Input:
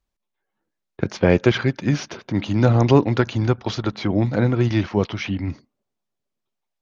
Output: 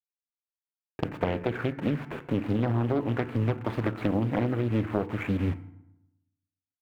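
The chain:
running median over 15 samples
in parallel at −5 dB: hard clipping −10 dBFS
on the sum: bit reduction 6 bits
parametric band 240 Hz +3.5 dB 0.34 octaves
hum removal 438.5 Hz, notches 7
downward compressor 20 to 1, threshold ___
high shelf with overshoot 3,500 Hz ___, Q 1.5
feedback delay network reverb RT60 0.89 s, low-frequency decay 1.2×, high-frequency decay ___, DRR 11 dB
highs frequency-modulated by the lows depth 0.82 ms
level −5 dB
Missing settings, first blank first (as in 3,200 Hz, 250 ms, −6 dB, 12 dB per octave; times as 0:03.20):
−17 dBFS, −12.5 dB, 0.6×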